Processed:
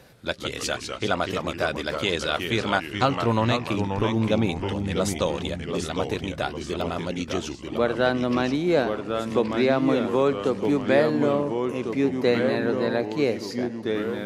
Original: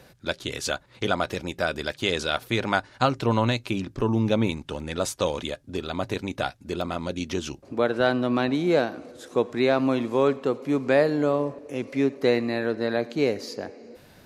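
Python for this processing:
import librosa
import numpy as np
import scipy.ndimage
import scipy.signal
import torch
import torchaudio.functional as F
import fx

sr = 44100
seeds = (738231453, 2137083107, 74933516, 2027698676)

y = fx.echo_pitch(x, sr, ms=119, semitones=-2, count=3, db_per_echo=-6.0)
y = fx.band_squash(y, sr, depth_pct=40, at=(9.3, 10.81))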